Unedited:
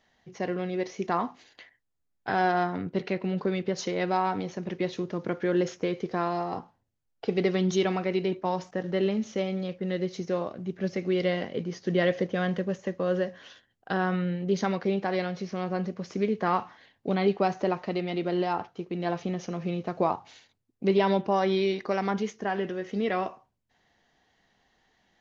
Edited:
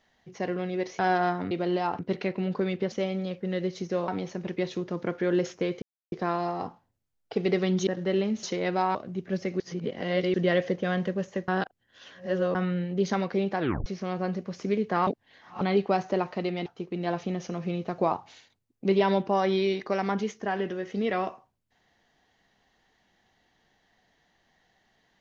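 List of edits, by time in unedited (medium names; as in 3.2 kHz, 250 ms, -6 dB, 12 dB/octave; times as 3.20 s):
0.99–2.33 s: delete
3.78–4.30 s: swap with 9.30–10.46 s
6.04 s: insert silence 0.30 s
7.79–8.74 s: delete
11.11–11.85 s: reverse
12.99–14.06 s: reverse
15.10 s: tape stop 0.27 s
16.58–17.12 s: reverse
18.17–18.65 s: move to 2.85 s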